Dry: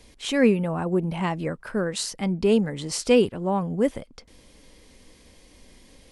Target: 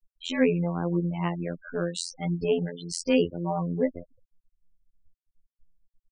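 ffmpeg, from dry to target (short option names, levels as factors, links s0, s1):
-af "afftfilt=real='hypot(re,im)*cos(PI*b)':imag='0':win_size=2048:overlap=0.75,afftfilt=real='re*gte(hypot(re,im),0.0224)':imag='im*gte(hypot(re,im),0.0224)':win_size=1024:overlap=0.75"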